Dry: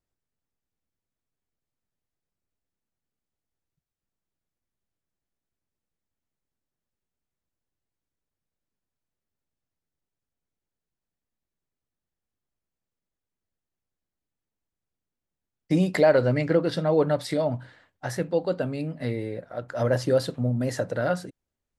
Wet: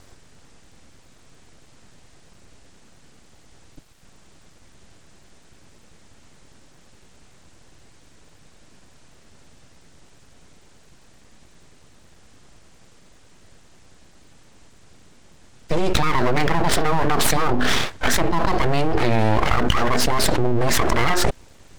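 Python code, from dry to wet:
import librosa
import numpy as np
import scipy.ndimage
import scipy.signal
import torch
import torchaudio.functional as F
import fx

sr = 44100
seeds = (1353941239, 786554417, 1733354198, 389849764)

y = fx.dynamic_eq(x, sr, hz=1500.0, q=2.4, threshold_db=-44.0, ratio=4.0, max_db=5)
y = scipy.signal.sosfilt(scipy.signal.butter(6, 8900.0, 'lowpass', fs=sr, output='sos'), y)
y = np.abs(y)
y = fx.env_flatten(y, sr, amount_pct=100)
y = F.gain(torch.from_numpy(y), -1.0).numpy()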